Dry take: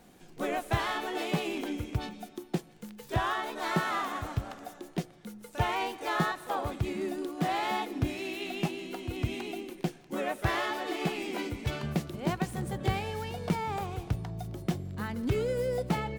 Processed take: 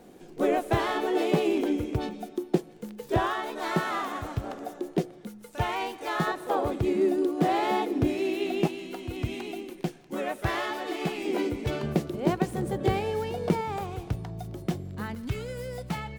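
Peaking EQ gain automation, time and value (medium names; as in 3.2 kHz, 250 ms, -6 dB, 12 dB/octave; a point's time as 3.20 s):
peaking EQ 400 Hz 1.6 oct
+11 dB
from 3.27 s +4.5 dB
from 4.44 s +12 dB
from 5.27 s +1.5 dB
from 6.27 s +11 dB
from 8.67 s +2 dB
from 11.25 s +9.5 dB
from 13.61 s +3 dB
from 15.15 s -8.5 dB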